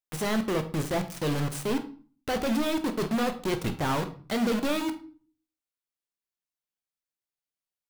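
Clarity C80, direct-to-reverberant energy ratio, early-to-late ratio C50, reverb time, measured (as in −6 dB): 17.0 dB, 7.5 dB, 12.5 dB, 0.40 s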